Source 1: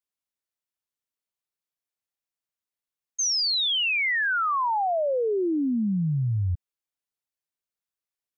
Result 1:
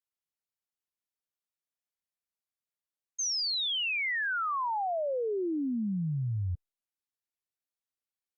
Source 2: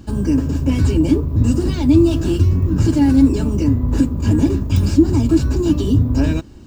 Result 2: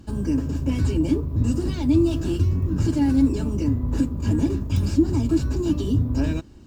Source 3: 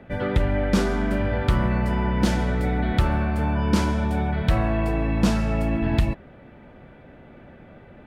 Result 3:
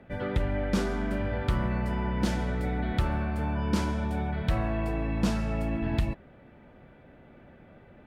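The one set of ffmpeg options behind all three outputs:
ffmpeg -i in.wav -af "volume=-6.5dB" -ar 48000 -c:a libopus -b:a 128k out.opus

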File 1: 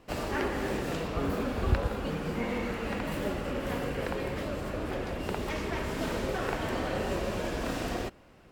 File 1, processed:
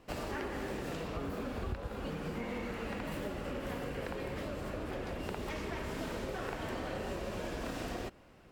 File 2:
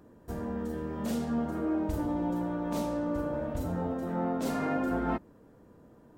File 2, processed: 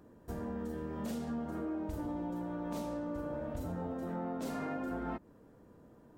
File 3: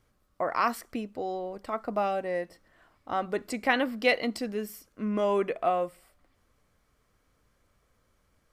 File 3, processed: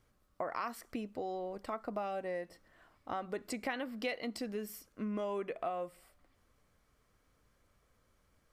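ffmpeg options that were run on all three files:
ffmpeg -i in.wav -af "acompressor=threshold=-33dB:ratio=4,volume=-2.5dB" out.wav

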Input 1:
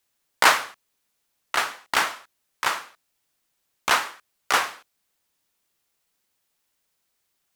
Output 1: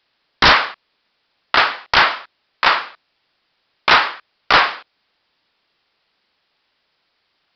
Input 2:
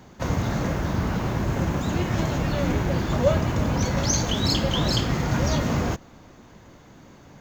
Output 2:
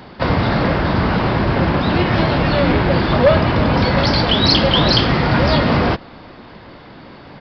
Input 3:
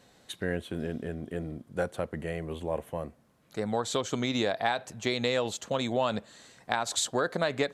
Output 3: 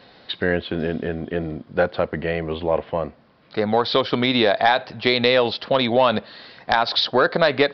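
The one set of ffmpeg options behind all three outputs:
ffmpeg -i in.wav -af "lowshelf=frequency=250:gain=-7,aresample=11025,aeval=exprs='0.75*sin(PI/2*3.98*val(0)/0.75)':channel_layout=same,aresample=44100,volume=-3dB" out.wav

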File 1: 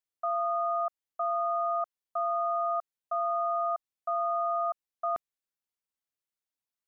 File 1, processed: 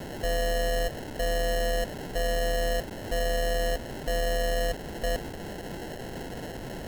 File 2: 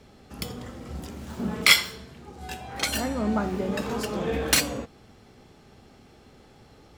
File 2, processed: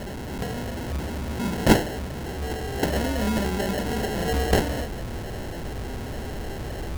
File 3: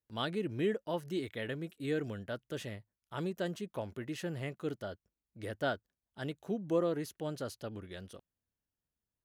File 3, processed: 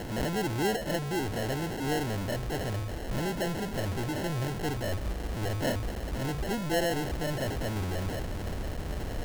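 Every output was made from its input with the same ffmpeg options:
ffmpeg -i in.wav -af "aeval=exprs='val(0)+0.5*0.0376*sgn(val(0))':channel_layout=same,asubboost=boost=3:cutoff=94,acrusher=samples=37:mix=1:aa=0.000001" out.wav

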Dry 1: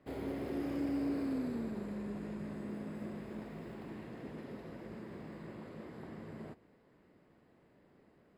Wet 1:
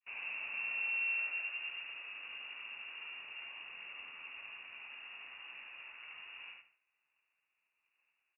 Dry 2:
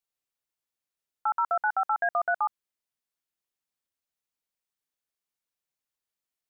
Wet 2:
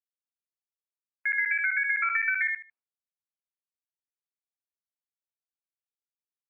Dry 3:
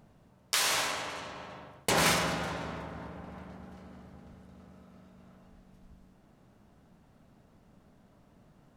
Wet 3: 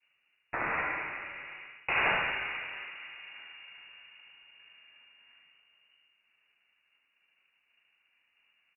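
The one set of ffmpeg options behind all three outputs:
ffmpeg -i in.wav -af "highpass=frequency=400:poles=1,agate=range=-33dB:threshold=-59dB:ratio=3:detection=peak,aecho=1:1:75|150|225:0.668|0.14|0.0295,lowpass=frequency=2600:width_type=q:width=0.5098,lowpass=frequency=2600:width_type=q:width=0.6013,lowpass=frequency=2600:width_type=q:width=0.9,lowpass=frequency=2600:width_type=q:width=2.563,afreqshift=-3000" -ar 24000 -c:a libmp3lame -b:a 24k out.mp3

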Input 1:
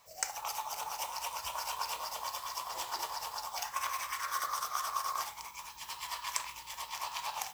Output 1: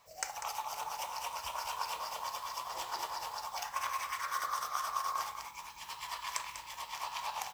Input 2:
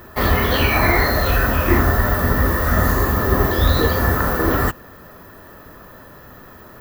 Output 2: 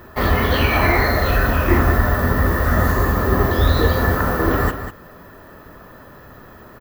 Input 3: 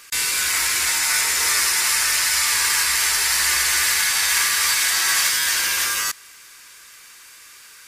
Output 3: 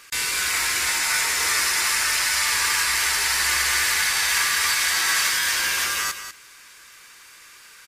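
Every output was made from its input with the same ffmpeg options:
ffmpeg -i in.wav -filter_complex "[0:a]highshelf=frequency=4800:gain=-6,asplit=2[link_01][link_02];[link_02]aecho=0:1:195:0.316[link_03];[link_01][link_03]amix=inputs=2:normalize=0" out.wav

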